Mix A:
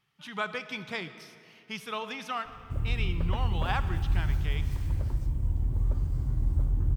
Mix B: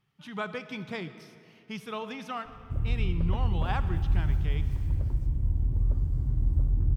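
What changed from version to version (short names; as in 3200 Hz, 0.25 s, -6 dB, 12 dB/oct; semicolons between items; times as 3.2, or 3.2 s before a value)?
background -3.5 dB; master: add tilt shelf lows +5 dB, about 630 Hz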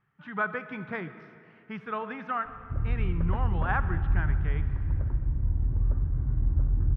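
master: add synth low-pass 1600 Hz, resonance Q 2.9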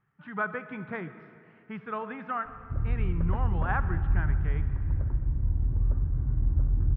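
master: add air absorption 250 m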